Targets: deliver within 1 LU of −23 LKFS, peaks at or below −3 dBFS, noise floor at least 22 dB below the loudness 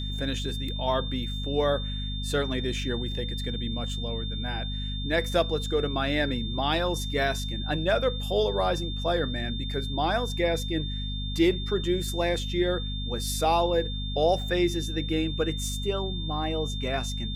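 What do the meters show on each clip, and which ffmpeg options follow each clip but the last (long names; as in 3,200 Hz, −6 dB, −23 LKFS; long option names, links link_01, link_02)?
mains hum 50 Hz; hum harmonics up to 250 Hz; level of the hum −30 dBFS; interfering tone 3,600 Hz; level of the tone −36 dBFS; integrated loudness −28.0 LKFS; sample peak −10.5 dBFS; target loudness −23.0 LKFS
→ -af "bandreject=frequency=50:width_type=h:width=6,bandreject=frequency=100:width_type=h:width=6,bandreject=frequency=150:width_type=h:width=6,bandreject=frequency=200:width_type=h:width=6,bandreject=frequency=250:width_type=h:width=6"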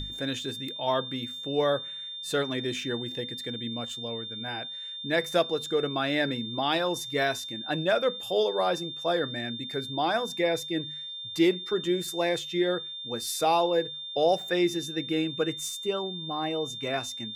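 mains hum none found; interfering tone 3,600 Hz; level of the tone −36 dBFS
→ -af "bandreject=frequency=3600:width=30"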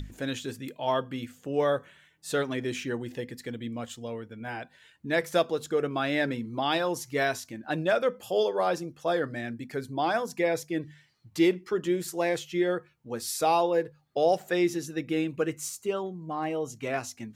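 interfering tone none found; integrated loudness −29.5 LKFS; sample peak −11.5 dBFS; target loudness −23.0 LKFS
→ -af "volume=6.5dB"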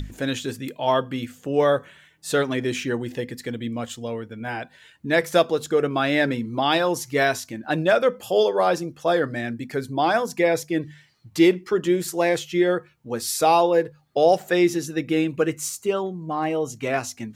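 integrated loudness −23.0 LKFS; sample peak −5.0 dBFS; background noise floor −56 dBFS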